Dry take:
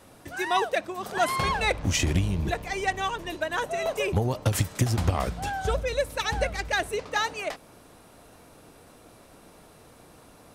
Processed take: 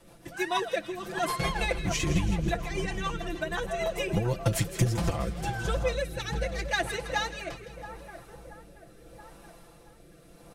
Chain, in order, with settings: low shelf 63 Hz +10 dB; on a send: split-band echo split 1500 Hz, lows 0.677 s, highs 0.162 s, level -10.5 dB; on the sum: rotary speaker horn 6.7 Hz, later 0.8 Hz, at 4.45; comb 5.9 ms, depth 83%; gain -3 dB

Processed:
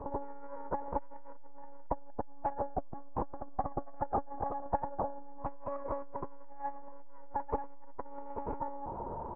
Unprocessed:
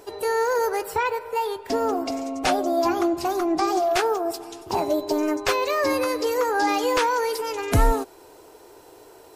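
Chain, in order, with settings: HPF 47 Hz 24 dB/oct; low shelf 380 Hz +5 dB; compressor 3:1, threshold -29 dBFS, peak gain reduction 13.5 dB; limiter -26.5 dBFS, peak gain reduction 11.5 dB; ladder low-pass 1000 Hz, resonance 75%; tapped delay 0.152/0.231/0.552/0.718/0.838 s -11.5/-8/-19.5/-7/-4.5 dB; monotone LPC vocoder at 8 kHz 280 Hz; core saturation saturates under 250 Hz; gain +11 dB

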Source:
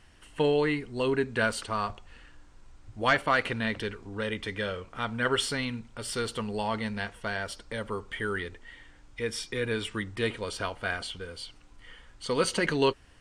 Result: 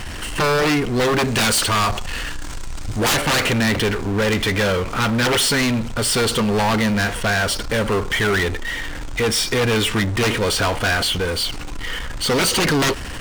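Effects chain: 1.19–3.12 high shelf 2900 Hz +9 dB; sine folder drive 18 dB, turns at -8 dBFS; power-law curve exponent 0.5; gain -8 dB

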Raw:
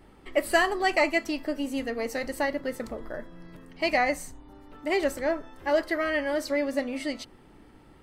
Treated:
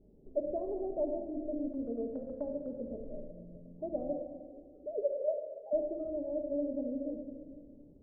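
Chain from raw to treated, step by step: 4.13–5.73 sine-wave speech; elliptic low-pass 590 Hz, stop band 70 dB; 1.68–2.76 gate -33 dBFS, range -11 dB; shoebox room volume 2100 m³, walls mixed, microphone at 1.4 m; gain -7.5 dB

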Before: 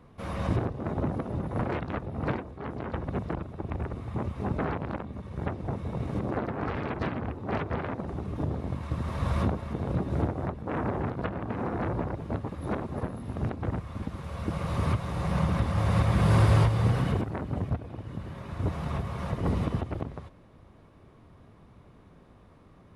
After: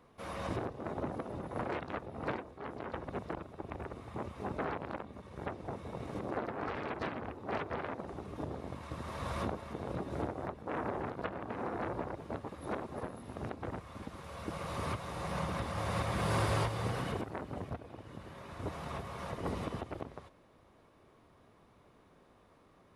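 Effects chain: tone controls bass -10 dB, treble +3 dB; gain -4 dB

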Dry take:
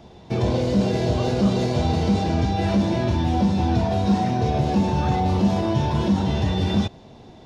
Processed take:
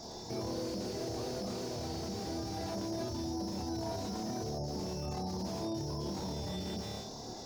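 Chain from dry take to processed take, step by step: resonant high shelf 4000 Hz +10.5 dB, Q 3; flutter echo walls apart 4.7 m, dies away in 0.41 s; spectral gate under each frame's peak -30 dB strong; de-hum 68.25 Hz, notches 25; limiter -27 dBFS, peak gain reduction 20.5 dB; tone controls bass -6 dB, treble 0 dB; slew limiter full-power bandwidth 23 Hz

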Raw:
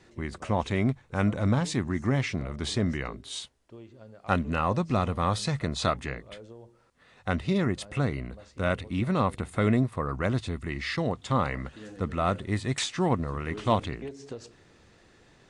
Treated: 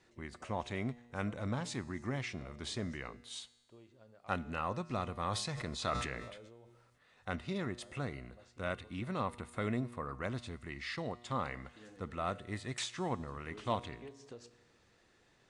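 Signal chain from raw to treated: low shelf 420 Hz -5 dB; resonator 120 Hz, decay 1.3 s, harmonics all, mix 50%; 5.2–7.36 sustainer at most 40 dB/s; gain -3 dB

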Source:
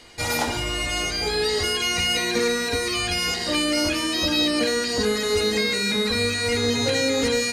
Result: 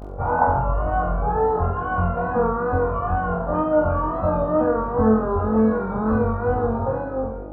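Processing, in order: ending faded out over 0.99 s; steep low-pass 1400 Hz 36 dB/oct; fixed phaser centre 850 Hz, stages 4; buzz 50 Hz, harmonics 16, -44 dBFS -4 dB/oct; wow and flutter 76 cents; flutter echo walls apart 3.9 m, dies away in 0.55 s; gain +7.5 dB

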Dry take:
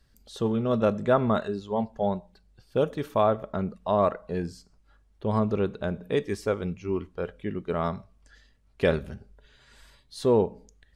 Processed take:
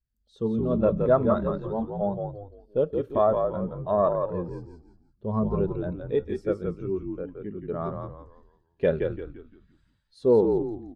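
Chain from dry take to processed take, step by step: added harmonics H 4 -24 dB, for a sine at -9 dBFS; frequency-shifting echo 0.171 s, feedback 49%, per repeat -50 Hz, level -3.5 dB; spectral expander 1.5:1

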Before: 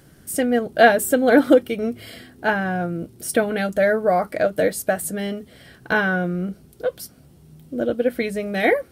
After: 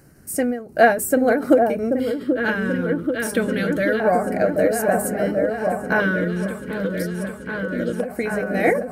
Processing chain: 7.02–7.75 high shelf 10000 Hz -11 dB; repeats that get brighter 0.784 s, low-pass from 750 Hz, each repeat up 1 oct, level -3 dB; LFO notch square 0.25 Hz 730–3400 Hz; ending taper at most 120 dB/s

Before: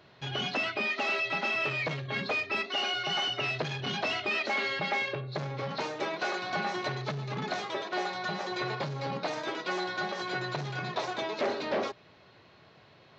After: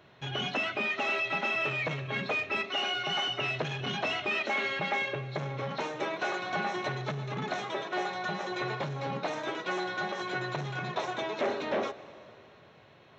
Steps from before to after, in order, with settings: bell 4700 Hz -13.5 dB 0.24 oct; reverb RT60 2.8 s, pre-delay 0.103 s, DRR 15.5 dB

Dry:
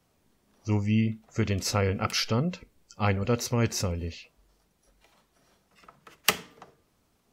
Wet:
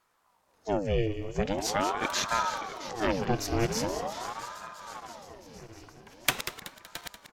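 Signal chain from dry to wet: regenerating reverse delay 0.334 s, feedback 76%, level -12 dB; feedback echo 0.188 s, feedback 41%, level -10 dB; ring modulator with a swept carrier 670 Hz, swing 70%, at 0.43 Hz

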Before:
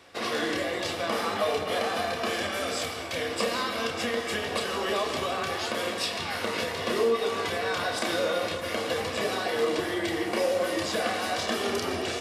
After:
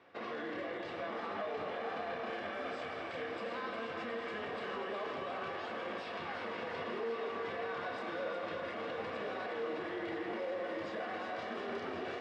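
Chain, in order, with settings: limiter -24.5 dBFS, peak gain reduction 11 dB; BPF 130–2100 Hz; thinning echo 0.36 s, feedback 82%, high-pass 420 Hz, level -7 dB; gain -6.5 dB

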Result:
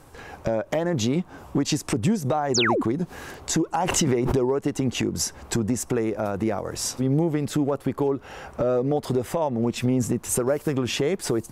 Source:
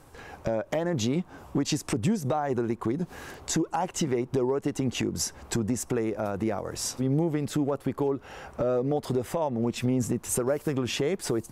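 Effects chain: 2.54–2.82 painted sound fall 220–7800 Hz -26 dBFS; 3.75–4.38 backwards sustainer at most 26 dB/s; gain +3.5 dB

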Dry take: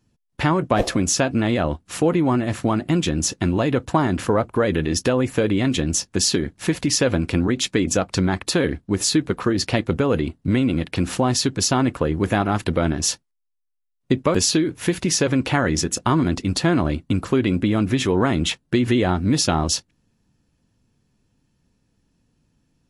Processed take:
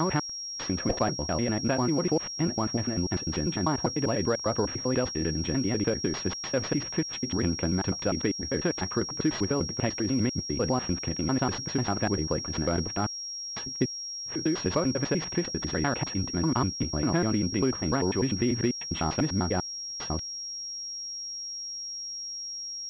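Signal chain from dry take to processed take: slices in reverse order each 99 ms, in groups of 6; pulse-width modulation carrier 5600 Hz; gain -7.5 dB

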